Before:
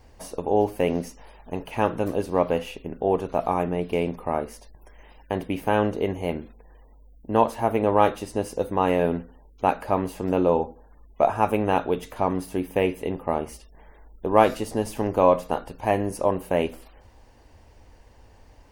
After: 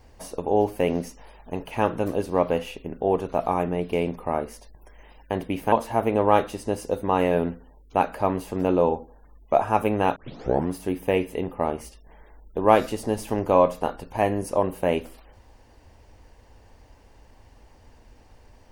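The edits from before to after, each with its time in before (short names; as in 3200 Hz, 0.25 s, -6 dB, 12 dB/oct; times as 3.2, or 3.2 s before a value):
5.72–7.4 cut
11.84 tape start 0.54 s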